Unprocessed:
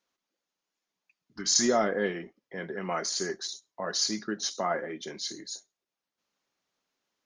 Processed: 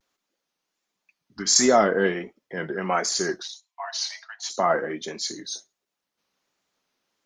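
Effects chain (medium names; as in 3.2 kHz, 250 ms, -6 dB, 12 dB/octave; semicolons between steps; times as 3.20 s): dynamic bell 940 Hz, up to +3 dB, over -40 dBFS, Q 0.73; 3.42–4.50 s: rippled Chebyshev high-pass 650 Hz, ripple 9 dB; vibrato 1.4 Hz 97 cents; trim +5.5 dB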